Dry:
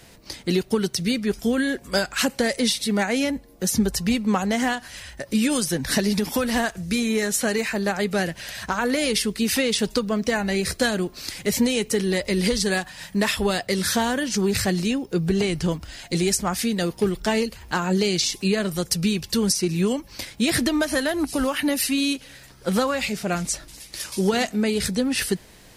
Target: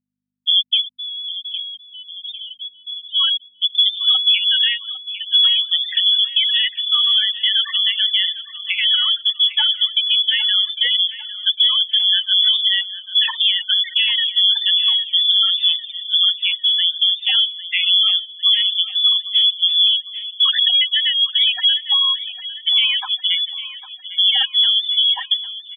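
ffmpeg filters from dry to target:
-filter_complex "[0:a]asplit=3[s0][s1][s2];[s0]afade=t=out:st=0.8:d=0.02[s3];[s1]aeval=exprs='(tanh(44.7*val(0)+0.5)-tanh(0.5))/44.7':c=same,afade=t=in:st=0.8:d=0.02,afade=t=out:st=3.14:d=0.02[s4];[s2]afade=t=in:st=3.14:d=0.02[s5];[s3][s4][s5]amix=inputs=3:normalize=0,highshelf=f=2700:g=-9,lowpass=f=3100:t=q:w=0.5098,lowpass=f=3100:t=q:w=0.6013,lowpass=f=3100:t=q:w=0.9,lowpass=f=3100:t=q:w=2.563,afreqshift=-3600,afftfilt=real='re*gte(hypot(re,im),0.126)':imag='im*gte(hypot(re,im),0.126)':win_size=1024:overlap=0.75,aeval=exprs='val(0)+0.00126*(sin(2*PI*50*n/s)+sin(2*PI*2*50*n/s)/2+sin(2*PI*3*50*n/s)/3+sin(2*PI*4*50*n/s)/4+sin(2*PI*5*50*n/s)/5)':c=same,highpass=f=600:t=q:w=5.4,aemphasis=mode=production:type=75fm,aecho=1:1:803|1606|2409|3212|4015:0.178|0.0942|0.05|0.0265|0.014,alimiter=level_in=2.66:limit=0.891:release=50:level=0:latency=1,volume=0.531" -ar 32000 -c:a libmp3lame -b:a 80k

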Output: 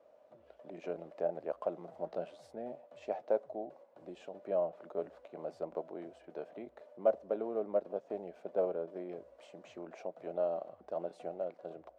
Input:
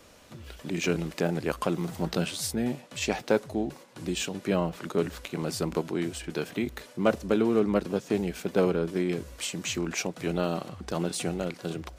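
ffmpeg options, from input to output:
-af "bandpass=f=620:t=q:w=5.3:csg=0,volume=1.12"

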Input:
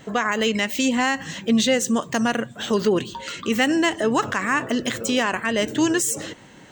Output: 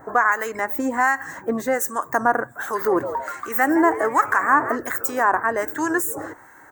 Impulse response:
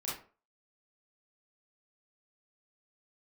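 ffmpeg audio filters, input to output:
-filter_complex "[0:a]firequalizer=gain_entry='entry(100,0);entry(200,-13);entry(290,3);entry(560,2);entry(790,11);entry(1600,10);entry(2900,-22);entry(4900,-11);entry(12000,14)':delay=0.05:min_phase=1,asplit=3[s0][s1][s2];[s0]afade=t=out:st=2.74:d=0.02[s3];[s1]asplit=5[s4][s5][s6][s7][s8];[s5]adelay=165,afreqshift=120,volume=0.251[s9];[s6]adelay=330,afreqshift=240,volume=0.108[s10];[s7]adelay=495,afreqshift=360,volume=0.0462[s11];[s8]adelay=660,afreqshift=480,volume=0.02[s12];[s4][s9][s10][s11][s12]amix=inputs=5:normalize=0,afade=t=in:st=2.74:d=0.02,afade=t=out:st=4.76:d=0.02[s13];[s2]afade=t=in:st=4.76:d=0.02[s14];[s3][s13][s14]amix=inputs=3:normalize=0,acrossover=split=1300[s15][s16];[s15]aeval=exprs='val(0)*(1-0.7/2+0.7/2*cos(2*PI*1.3*n/s))':c=same[s17];[s16]aeval=exprs='val(0)*(1-0.7/2-0.7/2*cos(2*PI*1.3*n/s))':c=same[s18];[s17][s18]amix=inputs=2:normalize=0"

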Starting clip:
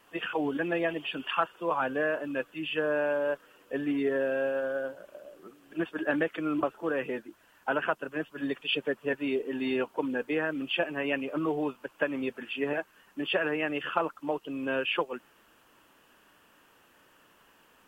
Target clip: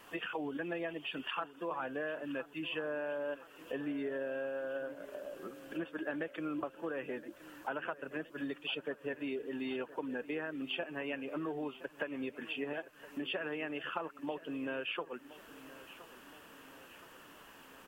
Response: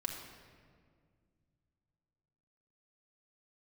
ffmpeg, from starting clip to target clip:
-filter_complex "[0:a]acompressor=threshold=0.00501:ratio=3,asplit=2[s0][s1];[s1]aecho=0:1:1019|2038|3057|4076|5095:0.141|0.0791|0.0443|0.0248|0.0139[s2];[s0][s2]amix=inputs=2:normalize=0,volume=1.78"

